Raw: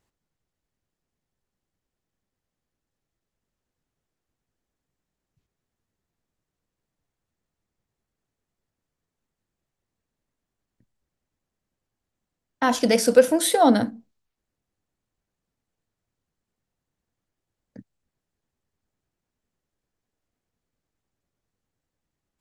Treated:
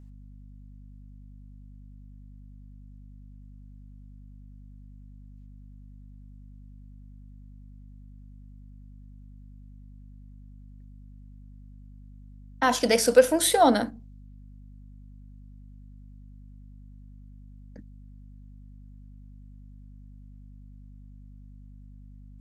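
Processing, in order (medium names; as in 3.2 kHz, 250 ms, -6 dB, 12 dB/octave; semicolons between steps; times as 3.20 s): high-pass 380 Hz 6 dB/octave; hum 50 Hz, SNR 14 dB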